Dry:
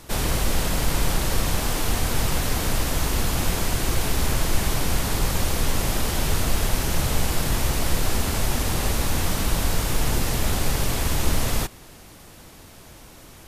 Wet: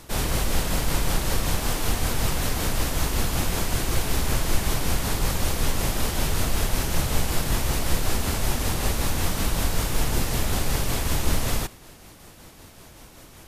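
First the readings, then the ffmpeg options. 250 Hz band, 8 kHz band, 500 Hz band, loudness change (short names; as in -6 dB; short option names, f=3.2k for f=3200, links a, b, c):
-1.5 dB, -1.5 dB, -1.5 dB, -1.5 dB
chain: -af "tremolo=f=5.3:d=0.31"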